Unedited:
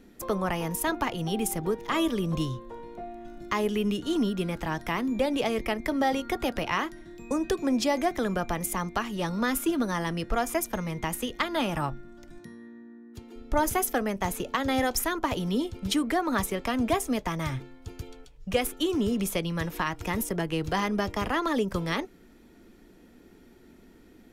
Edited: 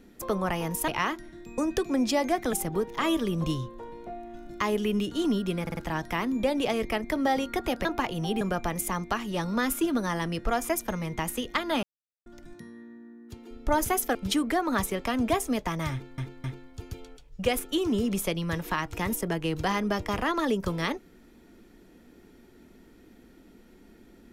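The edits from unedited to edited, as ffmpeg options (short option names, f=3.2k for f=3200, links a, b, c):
-filter_complex "[0:a]asplit=13[a][b][c][d][e][f][g][h][i][j][k][l][m];[a]atrim=end=0.882[n];[b]atrim=start=6.608:end=8.262[o];[c]atrim=start=1.438:end=4.582[p];[d]atrim=start=4.528:end=4.582[q];[e]atrim=start=4.528:end=4.582[r];[f]atrim=start=4.528:end=6.612[s];[g]atrim=start=0.878:end=1.442[t];[h]atrim=start=8.258:end=11.68,asetpts=PTS-STARTPTS,afade=t=out:st=3.418:d=0.004:c=hsin[u];[i]atrim=start=11.68:end=12.11,asetpts=PTS-STARTPTS,volume=0[v];[j]atrim=start=12.11:end=14.002,asetpts=PTS-STARTPTS,afade=t=in:d=0.004:c=hsin[w];[k]atrim=start=15.748:end=17.782[x];[l]atrim=start=17.518:end=17.782[y];[m]atrim=start=17.518[z];[n][o]acrossfade=d=0.004:c1=hsin:c2=hsin[aa];[aa][p]acrossfade=d=0.004:c1=hsin:c2=hsin[ab];[ab][q]acrossfade=d=0.004:c1=hsin:c2=hsin[ac];[ac][r]acrossfade=d=0.004:c1=hsin:c2=hsin[ad];[ad][s]acrossfade=d=0.004:c1=hsin:c2=hsin[ae];[ae][t]acrossfade=d=0.004:c1=hsin:c2=hsin[af];[u][v][w]concat=n=3:v=0:a=1[ag];[af][ag]acrossfade=d=0.004:c1=hsin:c2=hsin[ah];[ah][x]acrossfade=d=0.004:c1=hsin:c2=hsin[ai];[ai][y]acrossfade=d=0.004:c1=hsin:c2=hsin[aj];[aj][z]acrossfade=d=0.004:c1=hsin:c2=hsin"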